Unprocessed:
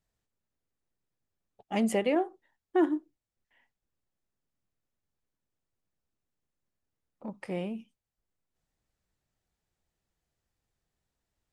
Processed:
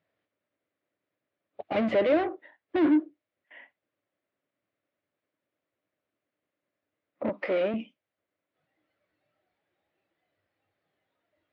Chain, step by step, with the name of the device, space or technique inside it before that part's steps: overdrive pedal into a guitar cabinet (overdrive pedal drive 33 dB, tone 1800 Hz, clips at -14.5 dBFS; speaker cabinet 94–3900 Hz, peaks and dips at 98 Hz +8 dB, 300 Hz +8 dB, 590 Hz +9 dB, 860 Hz -6 dB, 2100 Hz +4 dB); spectral noise reduction 10 dB; 7.29–7.74 HPF 280 Hz 12 dB/oct; gain -6.5 dB

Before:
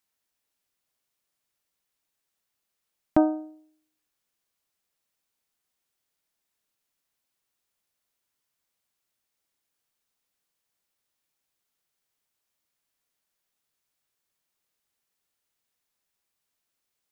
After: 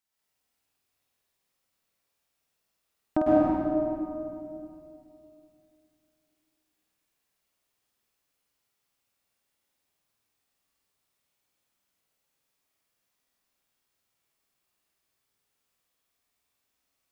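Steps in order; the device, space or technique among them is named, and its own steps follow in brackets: tunnel (flutter echo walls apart 8.6 m, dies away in 0.71 s; reverb RT60 2.7 s, pre-delay 0.105 s, DRR -7.5 dB); gain -6 dB

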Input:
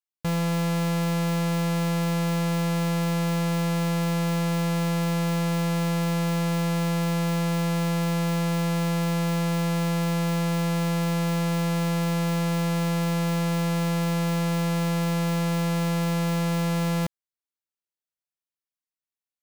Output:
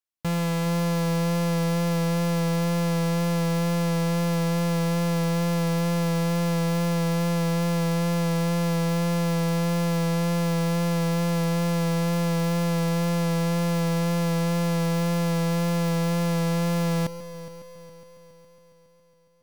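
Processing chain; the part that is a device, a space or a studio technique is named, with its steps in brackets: multi-head tape echo (multi-head echo 0.138 s, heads first and third, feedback 67%, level -16 dB; wow and flutter 17 cents)

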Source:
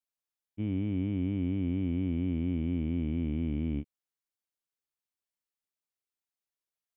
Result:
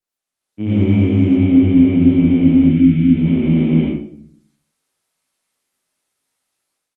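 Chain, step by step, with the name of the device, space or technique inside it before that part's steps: doubler 19 ms -5 dB; 2.15–3.79 notches 50/100/150/200/250/300/350/400/450 Hz; 2.6–3.15 spectral gain 330–1300 Hz -15 dB; far-field microphone of a smart speaker (reverb RT60 0.55 s, pre-delay 74 ms, DRR -8.5 dB; HPF 150 Hz 12 dB/oct; AGC gain up to 13.5 dB; Opus 24 kbps 48000 Hz)

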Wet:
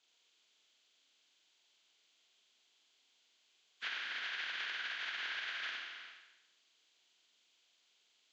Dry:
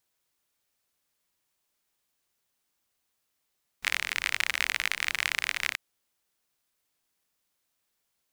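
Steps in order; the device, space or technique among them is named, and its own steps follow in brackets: Schroeder reverb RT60 0.91 s, combs from 26 ms, DRR 2 dB; hearing aid with frequency lowering (nonlinear frequency compression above 1000 Hz 1.5:1; compressor 3:1, threshold -46 dBFS, peak gain reduction 15.5 dB; speaker cabinet 370–5900 Hz, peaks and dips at 550 Hz -6 dB, 850 Hz -5 dB, 1200 Hz -6 dB, 1800 Hz -5 dB, 3200 Hz +6 dB, 5400 Hz -7 dB); gain +5 dB

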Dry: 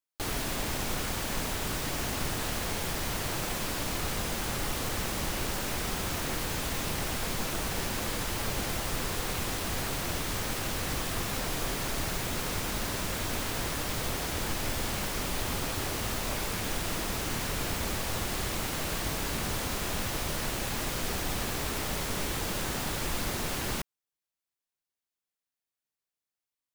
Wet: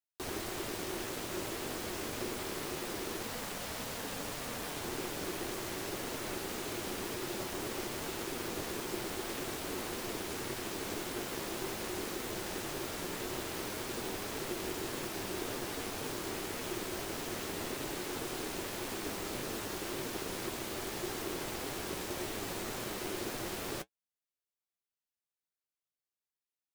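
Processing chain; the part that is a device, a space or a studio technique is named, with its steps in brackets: 3.23–4.73 HPF 56 Hz; alien voice (ring modulator 360 Hz; flange 1.8 Hz, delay 7.5 ms, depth 3.6 ms, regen -49%)

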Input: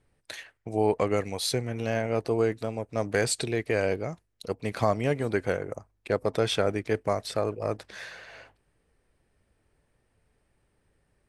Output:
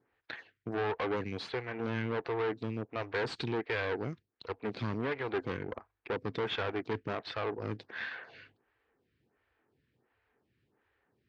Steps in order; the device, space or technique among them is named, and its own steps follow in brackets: vibe pedal into a guitar amplifier (photocell phaser 1.4 Hz; tube stage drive 33 dB, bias 0.7; speaker cabinet 110–4000 Hz, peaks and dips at 170 Hz -5 dB, 590 Hz -8 dB, 1600 Hz +3 dB); gain +5.5 dB

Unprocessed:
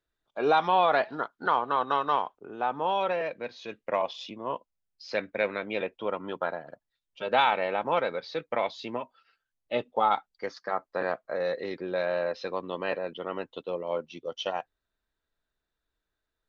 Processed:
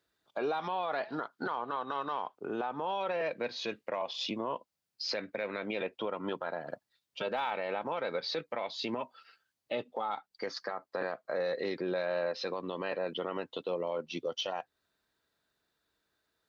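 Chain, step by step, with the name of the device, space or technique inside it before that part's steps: broadcast voice chain (HPF 110 Hz; de-esser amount 95%; compressor 3:1, threshold -36 dBFS, peak gain reduction 13 dB; bell 4600 Hz +4.5 dB 0.37 oct; limiter -31 dBFS, peak gain reduction 9.5 dB); gain +6.5 dB

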